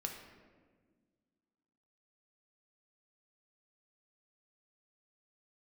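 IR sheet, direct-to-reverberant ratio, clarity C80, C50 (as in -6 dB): 2.0 dB, 7.0 dB, 5.0 dB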